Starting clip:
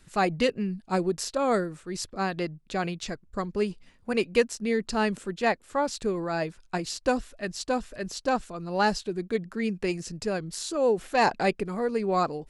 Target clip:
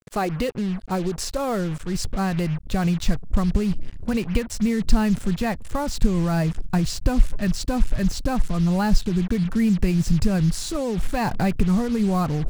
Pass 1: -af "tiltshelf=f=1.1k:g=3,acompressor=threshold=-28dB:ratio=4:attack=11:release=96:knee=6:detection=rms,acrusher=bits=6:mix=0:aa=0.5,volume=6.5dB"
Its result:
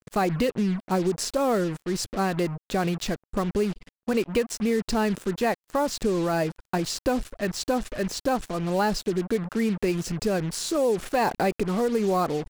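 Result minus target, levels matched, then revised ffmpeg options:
125 Hz band -6.0 dB
-af "tiltshelf=f=1.1k:g=3,acompressor=threshold=-28dB:ratio=4:attack=11:release=96:knee=6:detection=rms,asubboost=boost=11.5:cutoff=120,acrusher=bits=6:mix=0:aa=0.5,volume=6.5dB"

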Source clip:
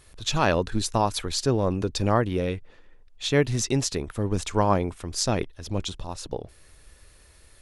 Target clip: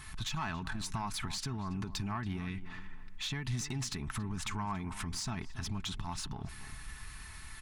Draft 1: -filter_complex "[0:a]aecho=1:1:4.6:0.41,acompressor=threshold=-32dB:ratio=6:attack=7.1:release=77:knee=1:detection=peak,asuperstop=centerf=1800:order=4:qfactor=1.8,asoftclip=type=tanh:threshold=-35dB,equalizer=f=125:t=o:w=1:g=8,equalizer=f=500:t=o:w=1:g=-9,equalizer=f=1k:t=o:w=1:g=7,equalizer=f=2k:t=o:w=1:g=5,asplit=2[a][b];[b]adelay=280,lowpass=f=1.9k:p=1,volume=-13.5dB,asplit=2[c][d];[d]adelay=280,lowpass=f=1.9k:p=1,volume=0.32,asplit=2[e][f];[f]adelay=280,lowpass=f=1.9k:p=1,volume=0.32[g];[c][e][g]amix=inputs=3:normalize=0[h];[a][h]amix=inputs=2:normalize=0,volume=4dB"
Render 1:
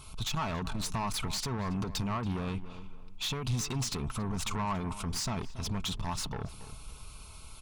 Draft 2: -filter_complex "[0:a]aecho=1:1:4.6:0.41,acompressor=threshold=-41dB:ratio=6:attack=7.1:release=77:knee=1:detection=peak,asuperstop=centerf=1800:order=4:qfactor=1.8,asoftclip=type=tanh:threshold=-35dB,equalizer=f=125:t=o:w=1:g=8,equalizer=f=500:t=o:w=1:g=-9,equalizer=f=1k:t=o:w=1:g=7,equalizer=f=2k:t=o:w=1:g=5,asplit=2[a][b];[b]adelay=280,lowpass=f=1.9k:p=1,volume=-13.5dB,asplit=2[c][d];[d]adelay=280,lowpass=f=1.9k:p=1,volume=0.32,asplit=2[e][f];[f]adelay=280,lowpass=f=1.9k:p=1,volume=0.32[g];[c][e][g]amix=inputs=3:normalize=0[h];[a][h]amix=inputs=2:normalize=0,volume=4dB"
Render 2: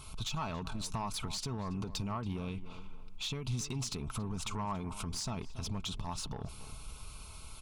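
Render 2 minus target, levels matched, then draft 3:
500 Hz band +5.5 dB
-filter_complex "[0:a]aecho=1:1:4.6:0.41,acompressor=threshold=-41dB:ratio=6:attack=7.1:release=77:knee=1:detection=peak,asuperstop=centerf=520:order=4:qfactor=1.8,asoftclip=type=tanh:threshold=-35dB,equalizer=f=125:t=o:w=1:g=8,equalizer=f=500:t=o:w=1:g=-9,equalizer=f=1k:t=o:w=1:g=7,equalizer=f=2k:t=o:w=1:g=5,asplit=2[a][b];[b]adelay=280,lowpass=f=1.9k:p=1,volume=-13.5dB,asplit=2[c][d];[d]adelay=280,lowpass=f=1.9k:p=1,volume=0.32,asplit=2[e][f];[f]adelay=280,lowpass=f=1.9k:p=1,volume=0.32[g];[c][e][g]amix=inputs=3:normalize=0[h];[a][h]amix=inputs=2:normalize=0,volume=4dB"

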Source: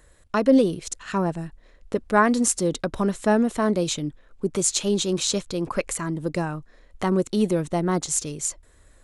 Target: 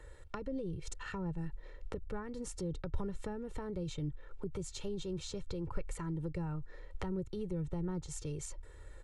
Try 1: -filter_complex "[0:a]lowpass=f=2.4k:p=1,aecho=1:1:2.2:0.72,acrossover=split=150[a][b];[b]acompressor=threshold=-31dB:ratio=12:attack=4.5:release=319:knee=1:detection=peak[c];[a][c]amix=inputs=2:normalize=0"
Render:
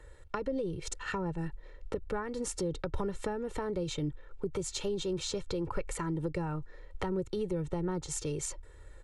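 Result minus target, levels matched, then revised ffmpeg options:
compressor: peak gain reduction -8.5 dB
-filter_complex "[0:a]lowpass=f=2.4k:p=1,aecho=1:1:2.2:0.72,acrossover=split=150[a][b];[b]acompressor=threshold=-40.5dB:ratio=12:attack=4.5:release=319:knee=1:detection=peak[c];[a][c]amix=inputs=2:normalize=0"

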